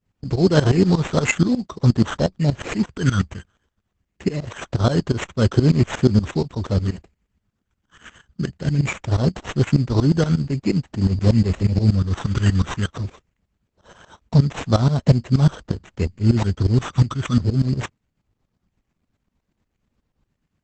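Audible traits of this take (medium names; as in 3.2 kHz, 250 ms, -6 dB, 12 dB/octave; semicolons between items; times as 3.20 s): phasing stages 12, 0.22 Hz, lowest notch 670–4700 Hz; aliases and images of a low sample rate 4.7 kHz, jitter 0%; tremolo saw up 8.4 Hz, depth 90%; Opus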